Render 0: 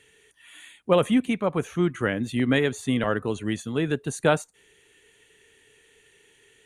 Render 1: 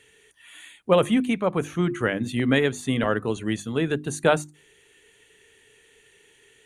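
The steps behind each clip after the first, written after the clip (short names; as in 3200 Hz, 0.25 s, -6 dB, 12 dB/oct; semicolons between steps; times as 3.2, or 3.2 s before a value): notches 50/100/150/200/250/300/350 Hz; gain +1.5 dB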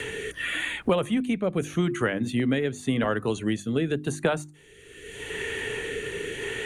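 rotary speaker horn 0.85 Hz; three-band squash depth 100%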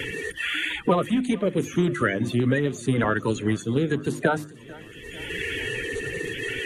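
bin magnitudes rounded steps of 30 dB; warbling echo 0.445 s, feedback 67%, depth 53 cents, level -22 dB; gain +3 dB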